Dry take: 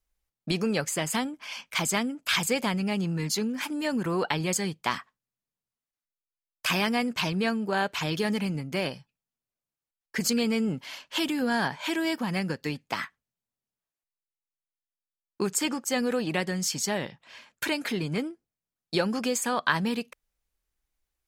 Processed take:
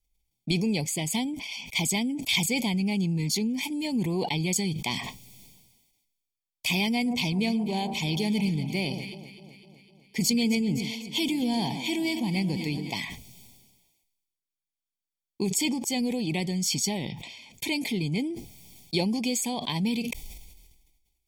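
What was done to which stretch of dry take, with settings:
6.93–12.94 echo with dull and thin repeats by turns 0.127 s, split 1200 Hz, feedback 77%, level -12 dB
whole clip: Chebyshev band-stop 720–2500 Hz, order 2; comb 0.9 ms, depth 64%; sustainer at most 41 dB/s

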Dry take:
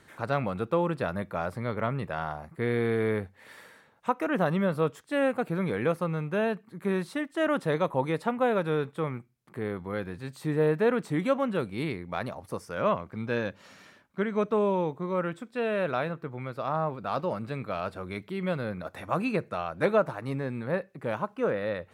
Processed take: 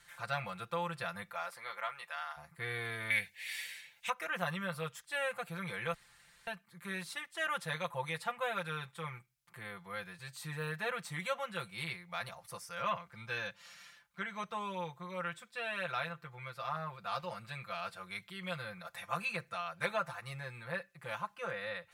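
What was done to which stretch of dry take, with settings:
1.32–2.36 HPF 350 Hz -> 1000 Hz
3.1–4.1 resonant high shelf 1700 Hz +9.5 dB, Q 3
5.94–6.47 room tone
whole clip: passive tone stack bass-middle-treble 10-0-10; comb 5.8 ms, depth 92%

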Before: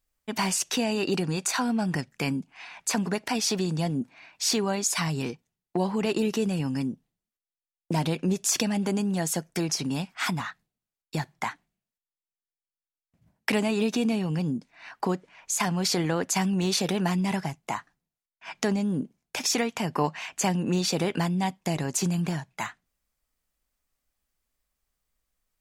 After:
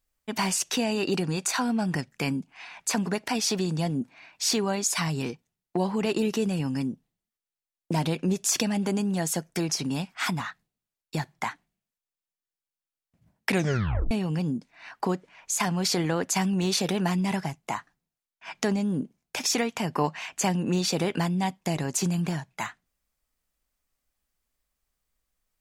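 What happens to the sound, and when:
13.49 tape stop 0.62 s

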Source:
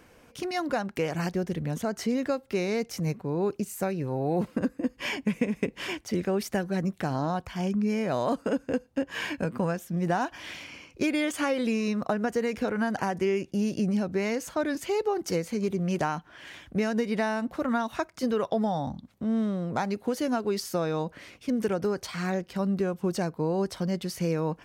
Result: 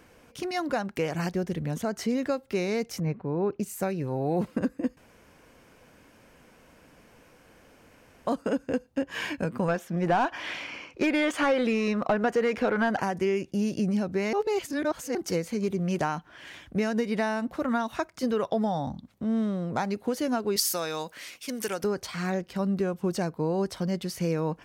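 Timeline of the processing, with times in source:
3–3.6 LPF 2400 Hz
4.97–8.27 room tone
9.68–13 overdrive pedal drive 16 dB, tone 1600 Hz, clips at -13.5 dBFS
14.33–15.15 reverse
20.56–21.84 tilt +4 dB/oct

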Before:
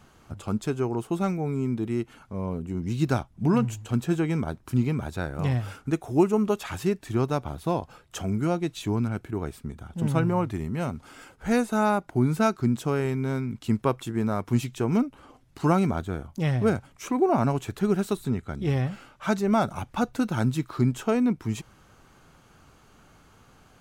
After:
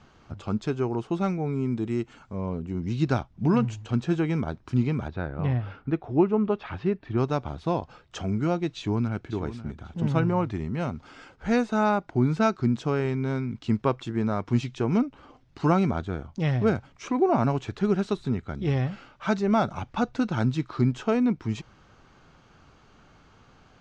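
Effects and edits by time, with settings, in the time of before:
1.71–2.35 bell 7600 Hz +11 dB 0.41 oct
5.08–7.18 air absorption 310 m
8.76–9.32 echo throw 0.54 s, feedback 25%, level -13 dB
whole clip: LPF 5800 Hz 24 dB/oct

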